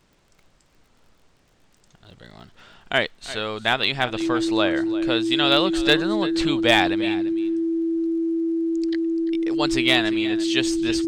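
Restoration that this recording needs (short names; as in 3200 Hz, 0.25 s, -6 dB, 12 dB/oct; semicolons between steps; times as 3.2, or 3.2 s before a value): clip repair -6.5 dBFS; de-click; notch 330 Hz, Q 30; inverse comb 0.344 s -15.5 dB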